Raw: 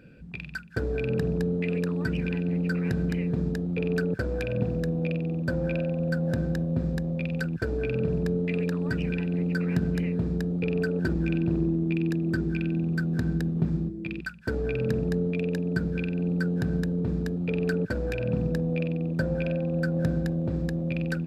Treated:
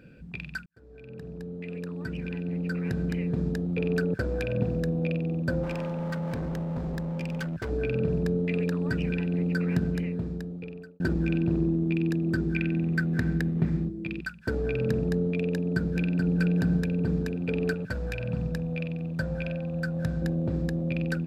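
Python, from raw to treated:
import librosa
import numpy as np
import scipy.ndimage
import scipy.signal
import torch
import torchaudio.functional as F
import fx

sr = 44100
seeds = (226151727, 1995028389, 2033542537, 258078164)

y = fx.clip_hard(x, sr, threshold_db=-29.0, at=(5.63, 7.7))
y = fx.peak_eq(y, sr, hz=2000.0, db=11.0, octaves=0.67, at=(12.55, 13.85))
y = fx.echo_throw(y, sr, start_s=15.53, length_s=0.82, ms=430, feedback_pct=65, wet_db=-5.0)
y = fx.peak_eq(y, sr, hz=340.0, db=-10.5, octaves=1.4, at=(17.73, 20.22))
y = fx.edit(y, sr, fx.fade_in_span(start_s=0.66, length_s=2.98),
    fx.fade_out_span(start_s=9.72, length_s=1.28), tone=tone)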